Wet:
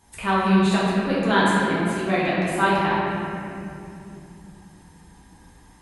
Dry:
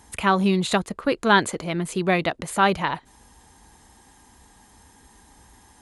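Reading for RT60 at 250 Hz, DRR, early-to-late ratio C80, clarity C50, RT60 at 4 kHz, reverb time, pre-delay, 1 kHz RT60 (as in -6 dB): 4.4 s, -9.5 dB, -1.5 dB, -3.5 dB, 1.6 s, 2.7 s, 4 ms, 2.4 s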